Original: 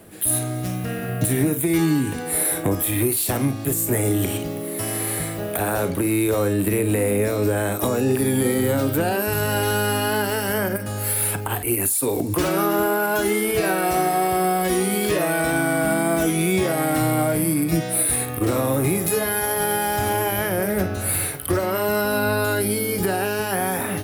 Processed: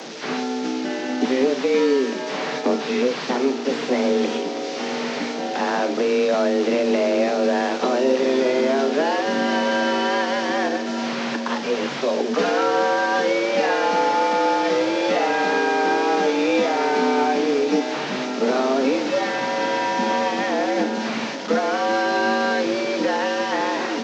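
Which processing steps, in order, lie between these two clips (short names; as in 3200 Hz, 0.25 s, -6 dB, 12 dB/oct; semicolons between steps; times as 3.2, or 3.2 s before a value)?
delta modulation 32 kbps, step -29.5 dBFS; frequency shift +130 Hz; diffused feedback echo 0.979 s, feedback 71%, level -16 dB; gain +1 dB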